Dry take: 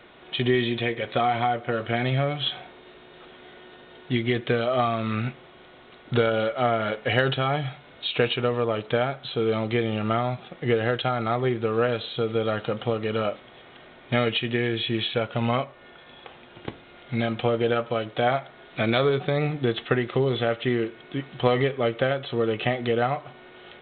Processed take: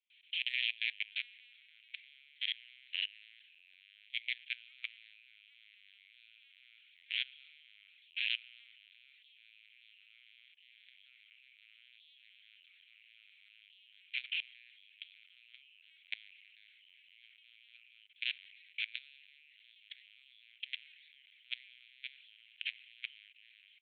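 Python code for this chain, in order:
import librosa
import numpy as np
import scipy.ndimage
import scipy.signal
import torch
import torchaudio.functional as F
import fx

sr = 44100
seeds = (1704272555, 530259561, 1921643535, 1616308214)

y = fx.tracing_dist(x, sr, depth_ms=0.45)
y = fx.echo_pitch(y, sr, ms=239, semitones=-2, count=3, db_per_echo=-3.0)
y = fx.air_absorb(y, sr, metres=310.0)
y = fx.rider(y, sr, range_db=10, speed_s=2.0)
y = fx.lpc_vocoder(y, sr, seeds[0], excitation='pitch_kept', order=8)
y = scipy.signal.sosfilt(scipy.signal.butter(8, 2400.0, 'highpass', fs=sr, output='sos'), y)
y = fx.level_steps(y, sr, step_db=21)
y = fx.band_widen(y, sr, depth_pct=40)
y = F.gain(torch.from_numpy(y), 4.5).numpy()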